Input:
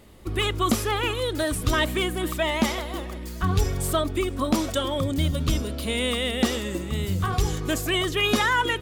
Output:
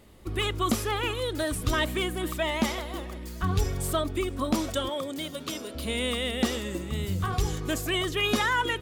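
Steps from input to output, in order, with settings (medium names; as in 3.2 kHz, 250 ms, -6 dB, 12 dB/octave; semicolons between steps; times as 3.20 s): 4.89–5.75 s: high-pass 330 Hz 12 dB/octave; trim -3.5 dB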